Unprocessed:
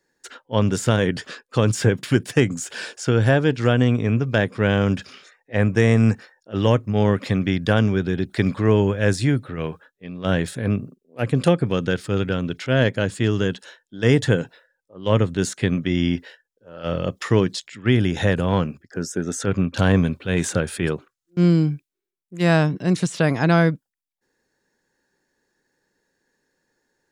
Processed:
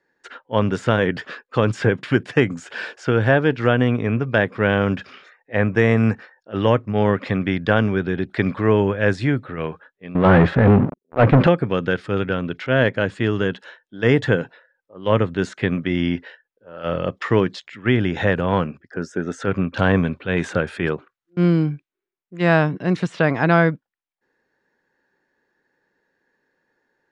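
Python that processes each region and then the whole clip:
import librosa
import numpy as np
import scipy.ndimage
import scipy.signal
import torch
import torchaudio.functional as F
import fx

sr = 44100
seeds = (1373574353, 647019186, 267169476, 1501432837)

y = fx.chain(x, sr, fx.leveller(passes=5),
    fx.spacing_loss(db_at_10k=32), at=(10.15, 11.47))
y = scipy.signal.sosfilt(scipy.signal.butter(2, 2000.0, 'lowpass', fs=sr, output='sos'), y)
y = fx.tilt_eq(y, sr, slope=2.0)
y = F.gain(torch.from_numpy(y), 4.0).numpy()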